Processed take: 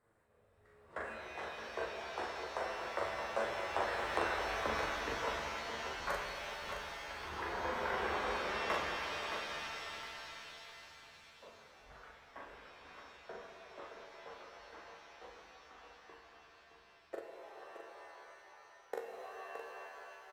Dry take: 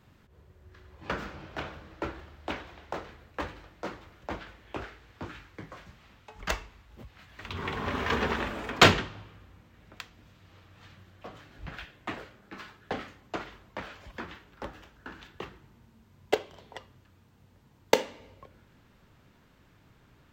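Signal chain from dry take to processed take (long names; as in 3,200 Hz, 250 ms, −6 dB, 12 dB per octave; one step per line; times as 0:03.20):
source passing by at 0:04.30, 42 m/s, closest 7.1 metres
downward compressor, threshold −52 dBFS, peak gain reduction 17.5 dB
graphic EQ with 10 bands 125 Hz −7 dB, 250 Hz −5 dB, 500 Hz +10 dB, 1,000 Hz +5 dB, 2,000 Hz +4 dB, 4,000 Hz +7 dB, 8,000 Hz +9 dB
flanger 0.29 Hz, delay 8.7 ms, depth 7 ms, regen +40%
flat-topped bell 4,000 Hz −15.5 dB
double-tracking delay 41 ms −2 dB
on a send: single-tap delay 619 ms −8 dB
on the sum: reverb with rising layers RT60 3.7 s, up +7 semitones, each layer −2 dB, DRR 3 dB
level +14.5 dB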